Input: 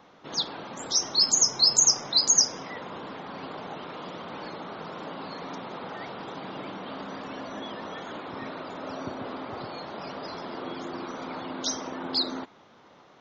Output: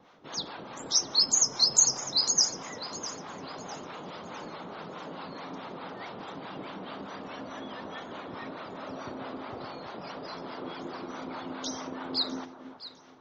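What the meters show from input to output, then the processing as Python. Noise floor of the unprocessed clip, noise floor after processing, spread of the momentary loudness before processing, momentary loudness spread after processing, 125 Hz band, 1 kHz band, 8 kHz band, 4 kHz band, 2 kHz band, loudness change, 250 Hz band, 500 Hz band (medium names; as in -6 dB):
-55 dBFS, -49 dBFS, 19 LU, 19 LU, -3.0 dB, -3.0 dB, no reading, -3.0 dB, -3.0 dB, -3.0 dB, -2.5 dB, -3.0 dB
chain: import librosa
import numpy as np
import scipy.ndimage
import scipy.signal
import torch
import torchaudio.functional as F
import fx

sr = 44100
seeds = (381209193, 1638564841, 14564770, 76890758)

y = fx.harmonic_tremolo(x, sr, hz=4.7, depth_pct=70, crossover_hz=600.0)
y = fx.echo_alternate(y, sr, ms=327, hz=1400.0, feedback_pct=56, wet_db=-10)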